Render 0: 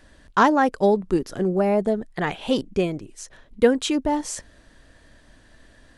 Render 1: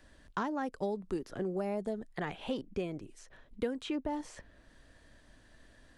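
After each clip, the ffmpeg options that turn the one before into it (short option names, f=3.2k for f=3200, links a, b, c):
-filter_complex "[0:a]acrossover=split=320|3400[a][b][c];[a]acompressor=threshold=-32dB:ratio=4[d];[b]acompressor=threshold=-28dB:ratio=4[e];[c]acompressor=threshold=-52dB:ratio=4[f];[d][e][f]amix=inputs=3:normalize=0,volume=-7.5dB"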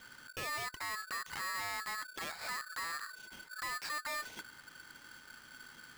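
-af "alimiter=level_in=7.5dB:limit=-24dB:level=0:latency=1:release=115,volume=-7.5dB,aresample=11025,asoftclip=type=tanh:threshold=-40dB,aresample=44100,aeval=exprs='val(0)*sgn(sin(2*PI*1500*n/s))':c=same,volume=4.5dB"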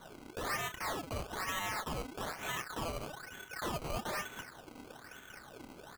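-filter_complex "[0:a]asplit=2[a][b];[b]adelay=31,volume=-7.5dB[c];[a][c]amix=inputs=2:normalize=0,acrusher=samples=17:mix=1:aa=0.000001:lfo=1:lforange=17:lforate=1.1,areverse,acompressor=mode=upward:threshold=-49dB:ratio=2.5,areverse,volume=1dB"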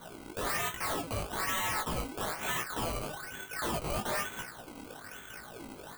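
-af "flanger=delay=17:depth=2.7:speed=1.1,aeval=exprs='0.0168*(abs(mod(val(0)/0.0168+3,4)-2)-1)':c=same,aexciter=amount=2.4:drive=1.2:freq=8.1k,volume=7.5dB"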